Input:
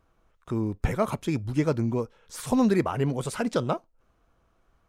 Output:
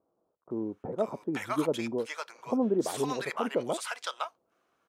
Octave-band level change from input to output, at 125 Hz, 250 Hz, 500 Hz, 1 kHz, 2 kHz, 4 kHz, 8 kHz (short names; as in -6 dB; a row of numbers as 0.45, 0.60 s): -15.0, -6.0, -2.0, -2.5, -0.5, +1.5, -1.0 dB